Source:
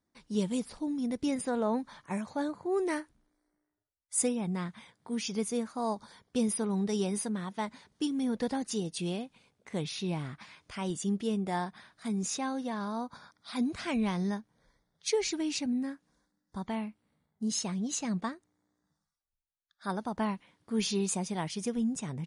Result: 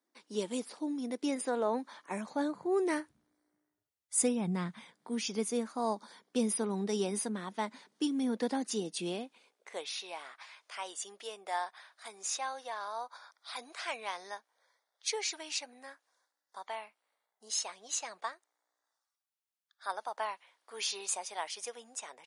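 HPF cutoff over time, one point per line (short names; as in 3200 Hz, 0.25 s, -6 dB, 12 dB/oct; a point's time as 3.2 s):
HPF 24 dB/oct
2.05 s 280 Hz
2.99 s 77 Hz
4.17 s 77 Hz
5.16 s 220 Hz
9.09 s 220 Hz
9.95 s 580 Hz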